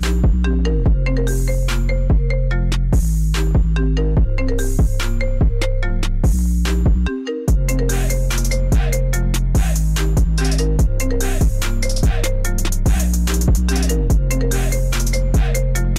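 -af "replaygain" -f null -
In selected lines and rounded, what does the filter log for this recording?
track_gain = +4.4 dB
track_peak = 0.244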